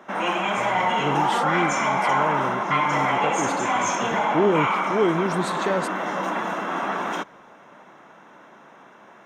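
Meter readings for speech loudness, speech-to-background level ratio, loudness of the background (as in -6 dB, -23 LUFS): -27.5 LUFS, -4.0 dB, -23.5 LUFS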